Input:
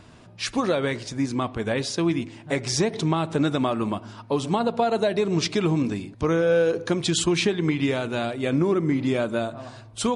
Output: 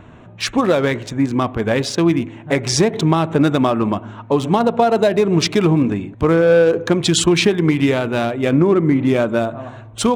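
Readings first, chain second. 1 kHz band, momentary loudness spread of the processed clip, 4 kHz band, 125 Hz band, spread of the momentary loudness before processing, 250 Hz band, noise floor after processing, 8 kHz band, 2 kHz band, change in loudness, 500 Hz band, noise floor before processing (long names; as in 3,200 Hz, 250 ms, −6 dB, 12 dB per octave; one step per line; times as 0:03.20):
+7.5 dB, 7 LU, +6.5 dB, +8.0 dB, 7 LU, +8.0 dB, −39 dBFS, +6.5 dB, +7.0 dB, +7.5 dB, +8.0 dB, −47 dBFS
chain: adaptive Wiener filter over 9 samples
level +8 dB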